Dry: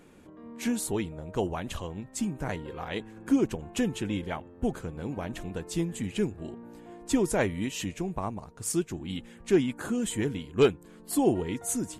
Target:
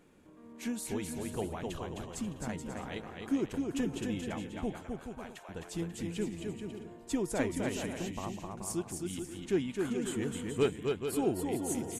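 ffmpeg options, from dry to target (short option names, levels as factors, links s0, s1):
-filter_complex "[0:a]asettb=1/sr,asplit=3[s0][s1][s2];[s0]atrim=end=4.784[s3];[s1]atrim=start=4.78:end=5.49,asetpts=PTS-STARTPTS,afade=t=in:d=0.004:c=qsin,afade=t=out:st=0.706:d=0.004:c=qsin,highpass=f=650:w=0.5412,highpass=f=650:w=1.3066[s4];[s2]atrim=start=5.486[s5];[s3][s4]acrossfade=d=0.004:c1=hsin:c2=qsin[s6];[s6][s5]acrossfade=d=0.004:c1=qsin:c2=hsin,aecho=1:1:260|429|538.8|610.3|656.7:0.631|0.398|0.251|0.158|0.1,volume=0.422"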